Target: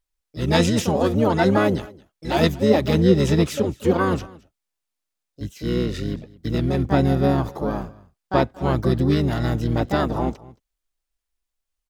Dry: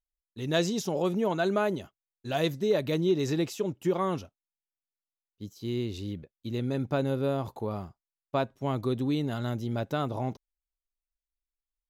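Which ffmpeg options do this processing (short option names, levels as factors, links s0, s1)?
-filter_complex "[0:a]acontrast=58,aecho=1:1:221:0.0794,asplit=3[s0][s1][s2];[s1]asetrate=22050,aresample=44100,atempo=2,volume=0.794[s3];[s2]asetrate=58866,aresample=44100,atempo=0.749154,volume=0.562[s4];[s0][s3][s4]amix=inputs=3:normalize=0"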